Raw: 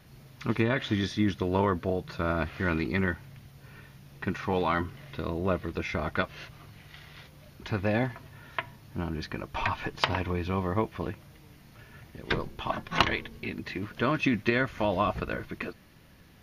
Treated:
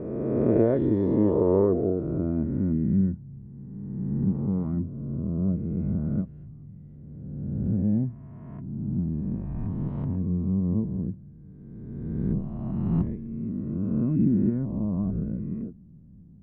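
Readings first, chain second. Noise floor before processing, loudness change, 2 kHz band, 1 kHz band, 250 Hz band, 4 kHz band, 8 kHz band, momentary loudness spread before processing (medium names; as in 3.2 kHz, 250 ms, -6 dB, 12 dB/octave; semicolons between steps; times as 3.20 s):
-55 dBFS, +3.5 dB, under -20 dB, -13.0 dB, +7.0 dB, under -30 dB, under -25 dB, 20 LU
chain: reverse spectral sustain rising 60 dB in 2.01 s; low-pass sweep 490 Hz -> 200 Hz, 1.32–2.91 s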